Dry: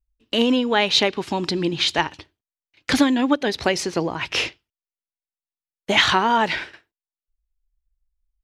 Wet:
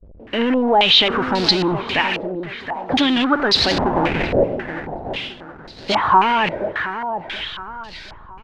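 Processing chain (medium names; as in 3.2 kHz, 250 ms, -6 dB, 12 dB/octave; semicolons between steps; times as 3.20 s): jump at every zero crossing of -18 dBFS; 1.99–2.90 s: steep high-pass 380 Hz; gate -24 dBFS, range -53 dB; in parallel at -1 dB: peak limiter -13 dBFS, peak gain reduction 10 dB; 3.71–4.44 s: on the sum: sample-rate reducer 1.2 kHz, jitter 20%; on a send: feedback delay 721 ms, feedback 35%, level -10 dB; on the sum: step-sequenced low-pass 3.7 Hz 570–4400 Hz; trim -7 dB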